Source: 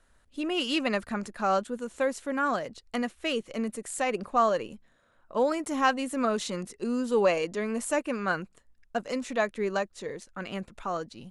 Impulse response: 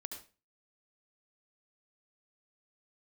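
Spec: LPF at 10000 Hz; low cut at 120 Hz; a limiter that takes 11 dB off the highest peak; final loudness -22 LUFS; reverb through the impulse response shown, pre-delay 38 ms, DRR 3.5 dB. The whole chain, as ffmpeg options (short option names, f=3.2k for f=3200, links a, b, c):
-filter_complex "[0:a]highpass=120,lowpass=10k,alimiter=limit=-21.5dB:level=0:latency=1,asplit=2[a][b];[1:a]atrim=start_sample=2205,adelay=38[c];[b][c]afir=irnorm=-1:irlink=0,volume=-1dB[d];[a][d]amix=inputs=2:normalize=0,volume=9dB"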